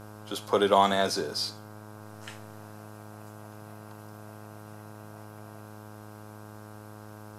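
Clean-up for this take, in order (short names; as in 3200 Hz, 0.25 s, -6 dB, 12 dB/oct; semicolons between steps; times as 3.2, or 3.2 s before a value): de-hum 106 Hz, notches 15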